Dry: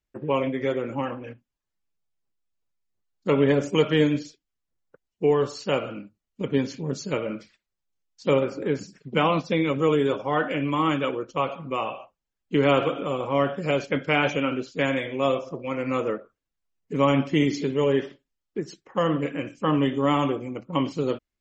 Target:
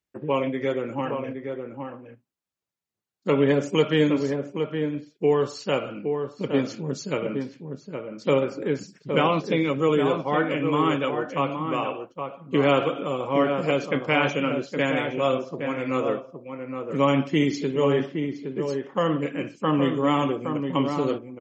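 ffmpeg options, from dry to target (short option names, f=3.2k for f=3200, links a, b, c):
-filter_complex "[0:a]highpass=100,asplit=2[a][b];[b]adelay=816.3,volume=-6dB,highshelf=f=4k:g=-18.4[c];[a][c]amix=inputs=2:normalize=0"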